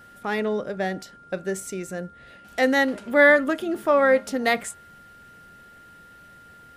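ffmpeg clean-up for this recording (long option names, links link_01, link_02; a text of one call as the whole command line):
ffmpeg -i in.wav -af "bandreject=frequency=1400:width=30" out.wav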